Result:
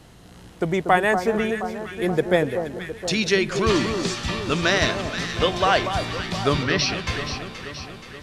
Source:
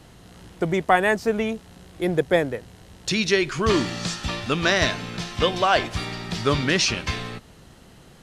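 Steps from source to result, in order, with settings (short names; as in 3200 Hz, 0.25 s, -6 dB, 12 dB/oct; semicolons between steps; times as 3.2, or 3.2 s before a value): 6.63–7.07 rippled Chebyshev low-pass 5900 Hz, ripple 3 dB; echo with dull and thin repeats by turns 0.238 s, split 1300 Hz, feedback 75%, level -7 dB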